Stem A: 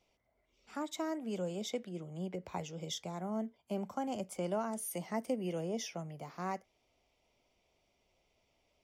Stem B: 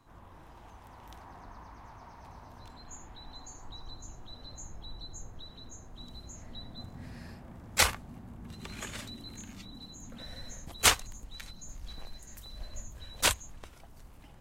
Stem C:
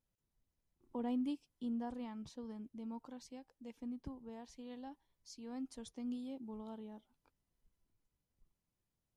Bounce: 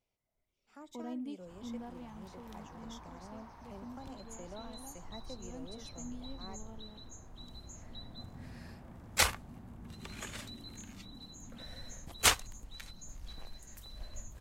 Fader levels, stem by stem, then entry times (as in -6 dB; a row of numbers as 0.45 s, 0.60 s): -13.0 dB, -3.0 dB, -4.0 dB; 0.00 s, 1.40 s, 0.00 s